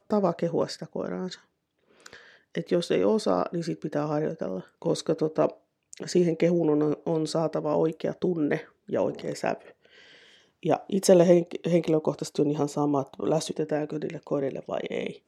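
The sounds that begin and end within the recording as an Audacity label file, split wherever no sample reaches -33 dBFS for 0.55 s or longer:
2.060000	9.540000	sound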